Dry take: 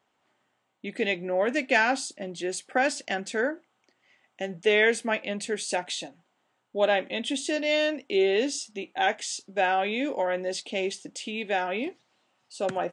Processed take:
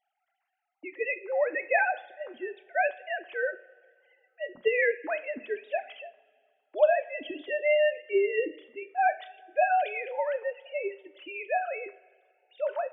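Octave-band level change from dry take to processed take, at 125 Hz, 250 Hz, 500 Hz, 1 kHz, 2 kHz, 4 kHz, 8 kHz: n/a, -12.5 dB, -1.0 dB, -0.5 dB, -2.5 dB, -14.0 dB, under -40 dB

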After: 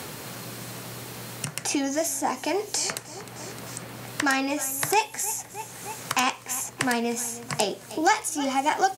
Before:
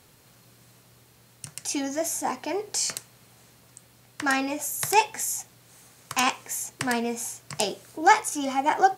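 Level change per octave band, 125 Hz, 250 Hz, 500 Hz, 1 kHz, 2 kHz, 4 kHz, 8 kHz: +7.0, +2.0, +1.5, -2.0, +0.5, +1.5, +1.5 dB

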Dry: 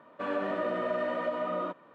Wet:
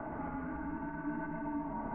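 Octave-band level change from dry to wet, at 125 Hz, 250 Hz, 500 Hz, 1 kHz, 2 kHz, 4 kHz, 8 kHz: +3.0 dB, +0.5 dB, -16.0 dB, -5.5 dB, -7.0 dB, under -30 dB, n/a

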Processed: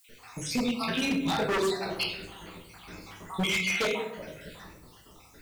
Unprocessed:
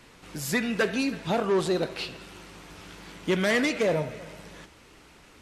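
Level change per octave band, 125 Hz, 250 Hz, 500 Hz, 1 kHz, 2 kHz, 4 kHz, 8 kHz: -3.5, -2.5, -5.5, 0.0, -1.5, +3.0, +0.5 dB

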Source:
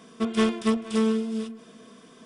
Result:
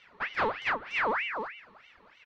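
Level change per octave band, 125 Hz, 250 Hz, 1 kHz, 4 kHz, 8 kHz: n/a, -22.0 dB, +4.5 dB, -4.5 dB, under -15 dB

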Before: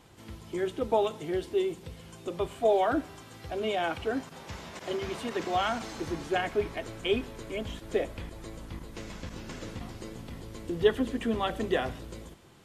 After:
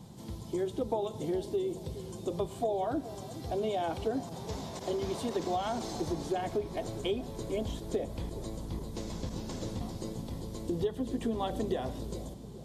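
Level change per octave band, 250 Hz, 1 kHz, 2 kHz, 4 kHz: -1.0, -4.0, -12.5, -5.5 dB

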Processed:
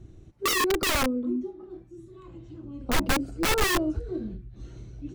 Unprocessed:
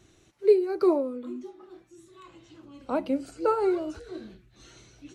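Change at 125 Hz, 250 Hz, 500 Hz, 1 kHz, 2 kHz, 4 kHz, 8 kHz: +17.5 dB, +1.0 dB, -6.0 dB, +4.0 dB, +17.5 dB, +20.0 dB, n/a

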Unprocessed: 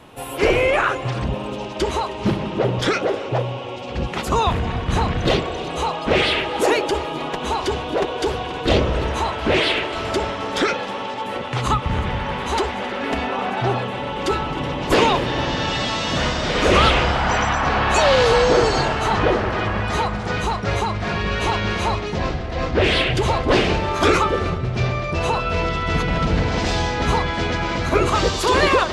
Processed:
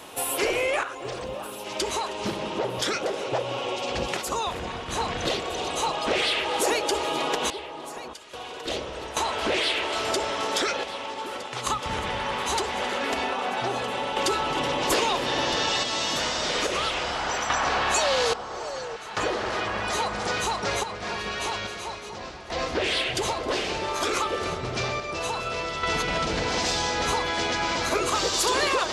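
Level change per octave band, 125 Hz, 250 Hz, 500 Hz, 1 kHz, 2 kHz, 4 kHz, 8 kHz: -16.0, -10.5, -7.5, -6.0, -5.5, -2.5, +3.0 dB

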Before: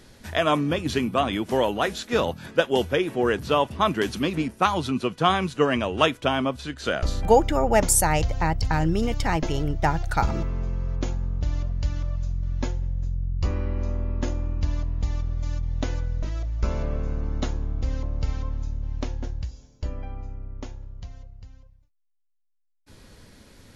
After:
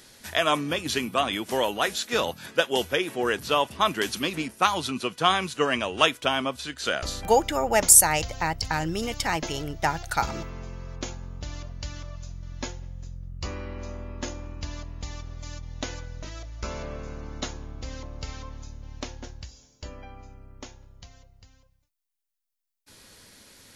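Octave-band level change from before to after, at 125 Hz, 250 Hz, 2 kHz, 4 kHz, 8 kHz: -9.5, -6.0, +1.5, +3.5, +6.5 dB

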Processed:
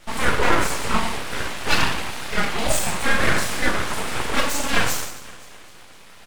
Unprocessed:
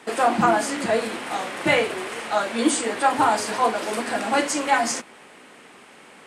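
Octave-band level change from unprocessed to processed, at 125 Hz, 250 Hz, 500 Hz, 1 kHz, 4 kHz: +8.5, -3.0, -4.0, -4.0, +4.5 dB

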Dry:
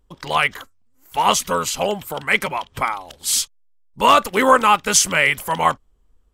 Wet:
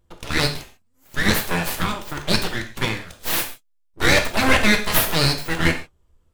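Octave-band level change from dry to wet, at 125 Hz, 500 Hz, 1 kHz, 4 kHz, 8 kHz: +9.0, -4.5, -10.0, +0.5, -8.0 dB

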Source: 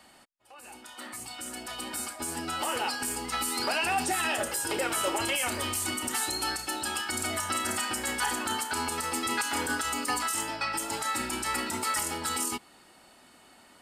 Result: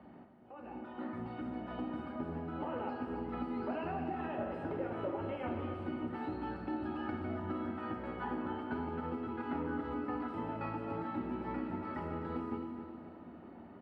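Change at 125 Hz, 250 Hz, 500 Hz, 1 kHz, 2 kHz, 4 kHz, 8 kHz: +1.5 dB, +0.5 dB, -3.5 dB, -9.5 dB, -16.5 dB, -27.5 dB, under -40 dB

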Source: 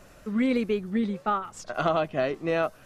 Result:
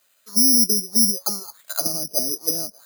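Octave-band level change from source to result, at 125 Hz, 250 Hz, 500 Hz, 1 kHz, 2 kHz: -3.5, 0.0, -8.0, -11.0, -12.5 dB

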